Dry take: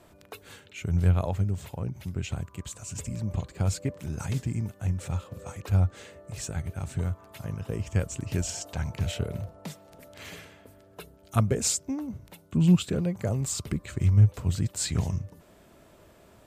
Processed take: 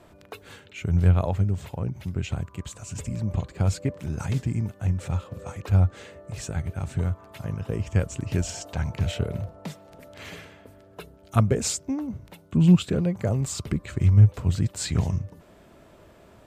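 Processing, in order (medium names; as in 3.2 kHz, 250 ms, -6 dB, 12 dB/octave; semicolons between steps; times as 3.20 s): treble shelf 5.6 kHz -8 dB; trim +3.5 dB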